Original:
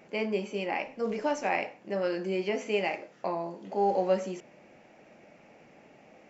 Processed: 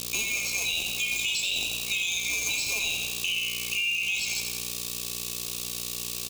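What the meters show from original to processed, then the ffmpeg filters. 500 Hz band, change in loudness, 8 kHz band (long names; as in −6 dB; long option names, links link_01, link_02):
−17.5 dB, +4.0 dB, can't be measured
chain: -filter_complex "[0:a]afftfilt=real='real(if(lt(b,920),b+92*(1-2*mod(floor(b/92),2)),b),0)':imag='imag(if(lt(b,920),b+92*(1-2*mod(floor(b/92),2)),b),0)':win_size=2048:overlap=0.75,aresample=22050,aresample=44100,aeval=exprs='val(0)+0.00631*(sin(2*PI*60*n/s)+sin(2*PI*2*60*n/s)/2+sin(2*PI*3*60*n/s)/3+sin(2*PI*4*60*n/s)/4+sin(2*PI*5*60*n/s)/5)':channel_layout=same,acrossover=split=510|1600[link_01][link_02][link_03];[link_01]acrusher=bits=6:mix=0:aa=0.000001[link_04];[link_04][link_02][link_03]amix=inputs=3:normalize=0,aexciter=amount=10.2:drive=8:freq=3200,alimiter=limit=-14dB:level=0:latency=1:release=21,aecho=1:1:86|172|258|344|430|516|602|688:0.447|0.264|0.155|0.0917|0.0541|0.0319|0.0188|0.0111,acompressor=threshold=-25dB:ratio=6"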